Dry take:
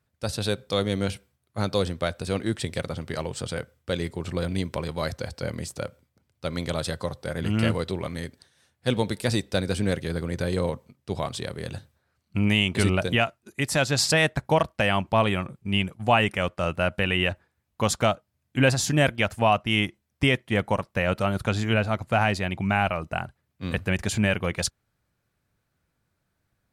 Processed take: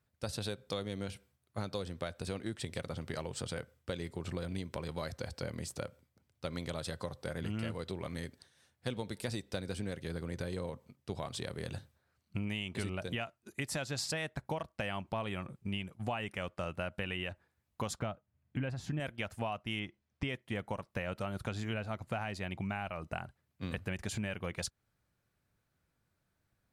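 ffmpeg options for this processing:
-filter_complex "[0:a]asettb=1/sr,asplit=3[a][b][c];[a]atrim=end=17.994[d];[b]atrim=start=17.99:end=19,asetpts=PTS-STARTPTS,afade=t=in:d=0.004:c=qsin,afade=t=out:st=1.006:d=0.004:c=qsin,bass=f=250:g=5,treble=f=4k:g=-15[e];[c]atrim=start=18.996[f];[d][e]acrossfade=d=0.004:c1=hsin:c2=qsin[g];[g][f]acrossfade=d=0.004:c1=qsin:c2=hsin,asettb=1/sr,asplit=3[h][i][j];[h]atrim=end=19.794[k];[i]atrim=start=19.79:end=20.29,asetpts=PTS-STARTPTS,afade=t=in:d=0.004:c=qsin,afade=t=out:st=0.496:d=0.004:c=qsin,lowpass=5.1k[l];[j]atrim=start=20.286[m];[k][l]acrossfade=d=0.004:c1=hsin:c2=qsin[n];[n][m]acrossfade=d=0.004:c1=qsin:c2=hsin,acompressor=threshold=-30dB:ratio=6,volume=-4.5dB"

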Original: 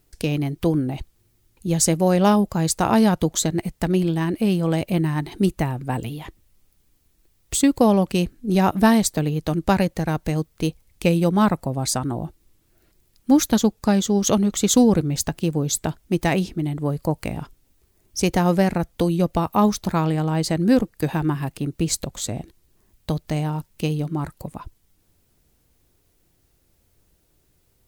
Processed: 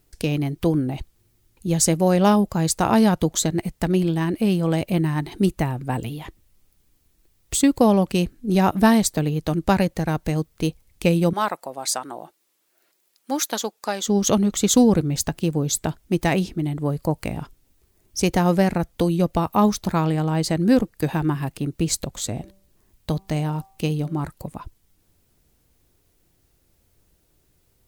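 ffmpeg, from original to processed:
-filter_complex "[0:a]asettb=1/sr,asplit=3[a][b][c];[a]atrim=end=11.334[d];[b]atrim=start=11.33:end=14.07,asetpts=PTS-STARTPTS,afade=t=in:d=0.004:c=qsin,afade=t=out:st=2.736:d=0.004:c=qsin,highpass=560[e];[c]atrim=start=14.066[f];[d][e]acrossfade=d=0.004:c1=hsin:c2=qsin[g];[g][f]acrossfade=d=0.004:c1=qsin:c2=hsin,asettb=1/sr,asplit=3[h][i][j];[h]atrim=end=22.164[k];[i]atrim=start=22.16:end=24.25,asetpts=PTS-STARTPTS,afade=t=in:d=0.004:c=qsin,afade=t=out:st=2.086:d=0.004:c=qsin,bandreject=f=193.8:t=h:w=4,bandreject=f=387.6:t=h:w=4,bandreject=f=581.4:t=h:w=4,bandreject=f=775.2:t=h:w=4,bandreject=f=969:t=h:w=4,bandreject=f=1.1628k:t=h:w=4[l];[j]atrim=start=24.246[m];[k][l]acrossfade=d=0.004:c1=hsin:c2=qsin[n];[n][m]acrossfade=d=0.004:c1=qsin:c2=hsin"

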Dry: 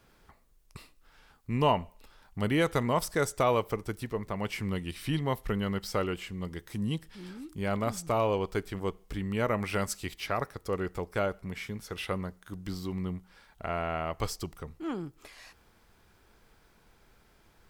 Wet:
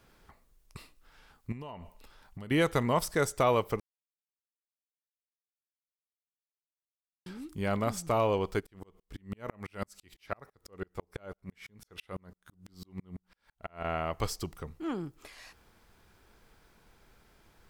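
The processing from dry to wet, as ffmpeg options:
-filter_complex "[0:a]asettb=1/sr,asplit=3[a][b][c];[a]atrim=end=1.524[d];[b]atrim=start=1.52:end=2.51,asetpts=PTS-STARTPTS,afade=t=in:d=0.004:c=qsin,afade=t=out:st=0.986:d=0.004:c=qsin,acompressor=threshold=-38dB:ratio=20:attack=3.2:release=140:knee=1:detection=peak[e];[c]atrim=start=2.506[f];[d][e]acrossfade=d=0.004:c1=hsin:c2=qsin[g];[g][f]acrossfade=d=0.004:c1=qsin:c2=hsin,asplit=3[h][i][j];[h]afade=t=out:st=8.59:d=0.02[k];[i]aeval=exprs='val(0)*pow(10,-40*if(lt(mod(-6*n/s,1),2*abs(-6)/1000),1-mod(-6*n/s,1)/(2*abs(-6)/1000),(mod(-6*n/s,1)-2*abs(-6)/1000)/(1-2*abs(-6)/1000))/20)':c=same,afade=t=in:st=8.59:d=0.02,afade=t=out:st=13.83:d=0.02[l];[j]afade=t=in:st=13.83:d=0.02[m];[k][l][m]amix=inputs=3:normalize=0,asplit=3[n][o][p];[n]atrim=end=3.8,asetpts=PTS-STARTPTS,afade=t=out:st=3.796:d=0.004:c=hsin[q];[o]atrim=start=3.8:end=7.26,asetpts=PTS-STARTPTS,volume=0[r];[p]atrim=start=7.26,asetpts=PTS-STARTPTS,afade=t=in:d=0.004:c=hsin[s];[q][r][s]concat=n=3:v=0:a=1"

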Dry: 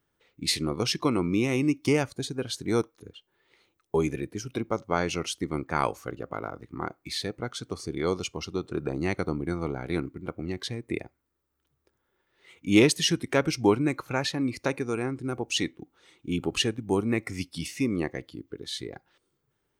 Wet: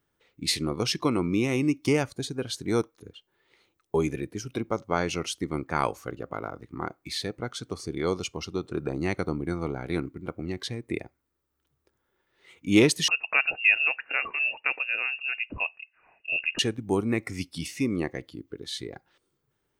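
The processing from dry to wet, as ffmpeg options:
-filter_complex "[0:a]asettb=1/sr,asplit=3[a][b][c];[a]atrim=end=13.084[d];[b]atrim=start=13.08:end=16.59,asetpts=PTS-STARTPTS,afade=t=in:d=0.004:c=qsin,afade=t=out:st=3.506:d=0.004:c=qsin,lowpass=f=2.5k:t=q:w=0.5098,lowpass=f=2.5k:t=q:w=0.6013,lowpass=f=2.5k:t=q:w=0.9,lowpass=f=2.5k:t=q:w=2.563,afreqshift=-2900[e];[c]atrim=start=16.586[f];[d][e]acrossfade=d=0.004:c1=hsin:c2=qsin[g];[g][f]acrossfade=d=0.004:c1=qsin:c2=hsin"

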